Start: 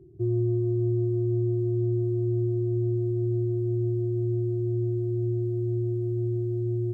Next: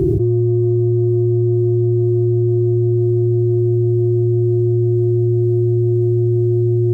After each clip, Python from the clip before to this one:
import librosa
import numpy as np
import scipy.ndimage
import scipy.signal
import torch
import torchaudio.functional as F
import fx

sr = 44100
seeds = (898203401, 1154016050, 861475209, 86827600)

y = fx.env_flatten(x, sr, amount_pct=100)
y = y * librosa.db_to_amplitude(9.0)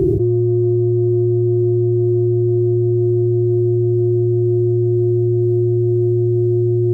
y = fx.peak_eq(x, sr, hz=490.0, db=6.0, octaves=0.96)
y = y * librosa.db_to_amplitude(-2.0)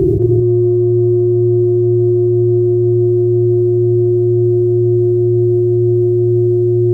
y = x + 10.0 ** (-5.5 / 20.0) * np.pad(x, (int(223 * sr / 1000.0), 0))[:len(x)]
y = y * librosa.db_to_amplitude(3.0)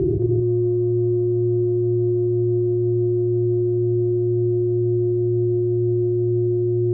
y = fx.air_absorb(x, sr, metres=190.0)
y = y * librosa.db_to_amplitude(-7.5)